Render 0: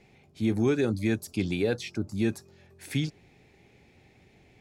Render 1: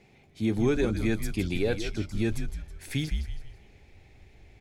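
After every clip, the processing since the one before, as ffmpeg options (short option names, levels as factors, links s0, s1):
-filter_complex "[0:a]asplit=5[s0][s1][s2][s3][s4];[s1]adelay=162,afreqshift=-88,volume=0.355[s5];[s2]adelay=324,afreqshift=-176,volume=0.132[s6];[s3]adelay=486,afreqshift=-264,volume=0.0484[s7];[s4]adelay=648,afreqshift=-352,volume=0.018[s8];[s0][s5][s6][s7][s8]amix=inputs=5:normalize=0,asubboost=boost=7:cutoff=70"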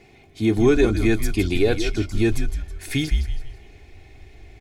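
-af "aecho=1:1:2.8:0.45,volume=2.24"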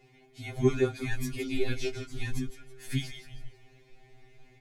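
-af "afftfilt=real='re*2.45*eq(mod(b,6),0)':imag='im*2.45*eq(mod(b,6),0)':win_size=2048:overlap=0.75,volume=0.447"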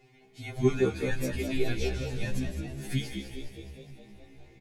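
-filter_complex "[0:a]asplit=8[s0][s1][s2][s3][s4][s5][s6][s7];[s1]adelay=208,afreqshift=66,volume=0.376[s8];[s2]adelay=416,afreqshift=132,volume=0.221[s9];[s3]adelay=624,afreqshift=198,volume=0.13[s10];[s4]adelay=832,afreqshift=264,volume=0.0776[s11];[s5]adelay=1040,afreqshift=330,volume=0.0457[s12];[s6]adelay=1248,afreqshift=396,volume=0.0269[s13];[s7]adelay=1456,afreqshift=462,volume=0.0158[s14];[s0][s8][s9][s10][s11][s12][s13][s14]amix=inputs=8:normalize=0"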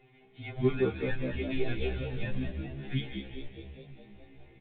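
-filter_complex "[0:a]asplit=2[s0][s1];[s1]asoftclip=type=tanh:threshold=0.0891,volume=0.422[s2];[s0][s2]amix=inputs=2:normalize=0,volume=0.596" -ar 8000 -c:a pcm_mulaw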